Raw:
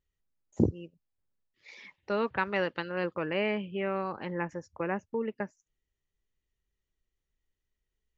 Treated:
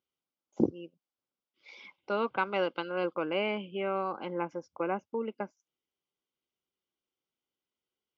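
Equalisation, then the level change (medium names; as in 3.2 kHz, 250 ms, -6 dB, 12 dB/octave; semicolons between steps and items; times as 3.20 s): Butterworth band-stop 1.8 kHz, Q 2.9; distance through air 51 m; cabinet simulation 370–5000 Hz, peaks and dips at 430 Hz -7 dB, 630 Hz -6 dB, 930 Hz -5 dB, 1.3 kHz -5 dB, 2.5 kHz -8 dB, 4.1 kHz -9 dB; +7.0 dB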